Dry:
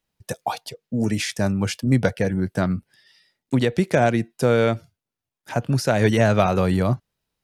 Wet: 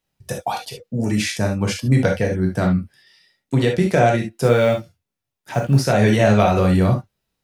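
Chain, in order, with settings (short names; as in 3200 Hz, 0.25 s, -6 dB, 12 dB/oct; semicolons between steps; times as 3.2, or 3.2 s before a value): 4.43–5.81 block floating point 7-bit; non-linear reverb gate 90 ms flat, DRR 0.5 dB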